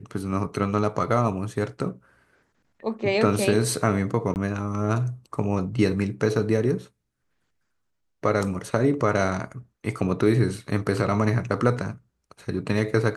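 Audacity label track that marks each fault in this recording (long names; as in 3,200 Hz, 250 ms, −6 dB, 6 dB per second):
4.340000	4.360000	drop-out 19 ms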